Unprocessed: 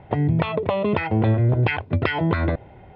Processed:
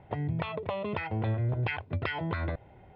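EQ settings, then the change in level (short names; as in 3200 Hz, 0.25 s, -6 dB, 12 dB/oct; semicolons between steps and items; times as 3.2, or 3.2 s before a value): dynamic EQ 280 Hz, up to -6 dB, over -33 dBFS, Q 0.74; -8.5 dB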